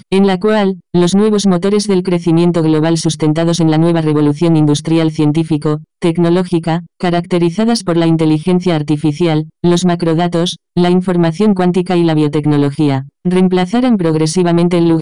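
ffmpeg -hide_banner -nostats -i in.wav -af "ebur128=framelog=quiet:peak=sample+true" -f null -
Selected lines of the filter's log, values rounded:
Integrated loudness:
  I:         -12.6 LUFS
  Threshold: -22.6 LUFS
Loudness range:
  LRA:         1.6 LU
  Threshold: -32.8 LUFS
  LRA low:   -13.6 LUFS
  LRA high:  -12.0 LUFS
Sample peak:
  Peak:       -4.0 dBFS
True peak:
  Peak:       -4.0 dBFS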